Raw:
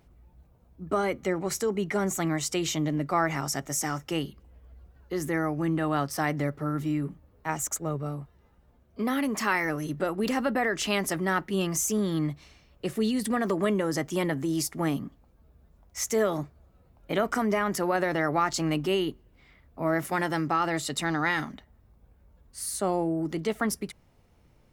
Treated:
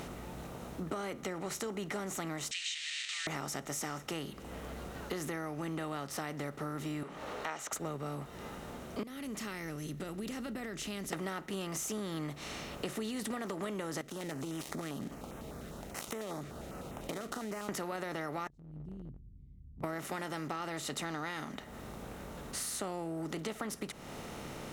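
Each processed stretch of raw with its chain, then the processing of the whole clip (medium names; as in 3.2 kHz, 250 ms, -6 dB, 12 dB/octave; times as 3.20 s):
2.51–3.27 s: one-bit delta coder 64 kbps, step -30 dBFS + Chebyshev band-pass 1.8–8.3 kHz, order 5 + high-order bell 3.3 kHz +8.5 dB 1.1 oct
7.03–7.73 s: three-band isolator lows -23 dB, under 480 Hz, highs -21 dB, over 5.5 kHz + band-stop 4.9 kHz, Q 21 + upward compressor, threshold -42 dBFS
9.03–11.13 s: amplifier tone stack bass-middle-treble 10-0-1 + tape noise reduction on one side only encoder only
14.01–17.69 s: dead-time distortion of 0.09 ms + compression 5:1, threshold -41 dBFS + step-sequenced notch 10 Hz 900–4500 Hz
18.47–19.84 s: inverse Chebyshev low-pass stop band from 570 Hz, stop band 80 dB + compression, threshold -52 dBFS
whole clip: spectral levelling over time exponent 0.6; band-stop 1.7 kHz, Q 28; compression 5:1, threshold -38 dBFS; trim +1 dB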